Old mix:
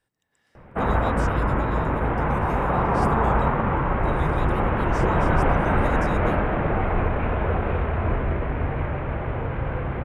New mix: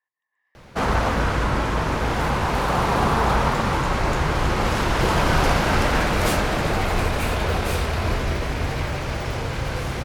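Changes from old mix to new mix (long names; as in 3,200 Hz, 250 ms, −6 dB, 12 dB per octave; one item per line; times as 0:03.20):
speech: add pair of resonant band-passes 1,400 Hz, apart 0.75 octaves
background: remove Bessel low-pass filter 1,500 Hz, order 8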